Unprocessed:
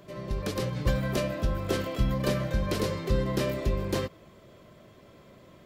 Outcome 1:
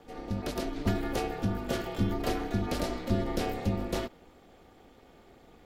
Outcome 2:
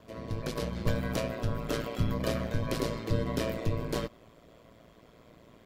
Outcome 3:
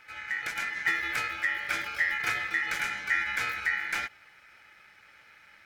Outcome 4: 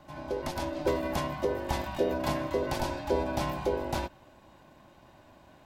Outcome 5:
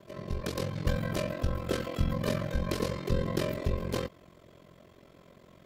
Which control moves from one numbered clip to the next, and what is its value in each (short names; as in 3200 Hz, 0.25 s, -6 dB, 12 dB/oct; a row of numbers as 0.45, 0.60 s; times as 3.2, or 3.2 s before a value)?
ring modulator, frequency: 150, 57, 1900, 450, 22 Hz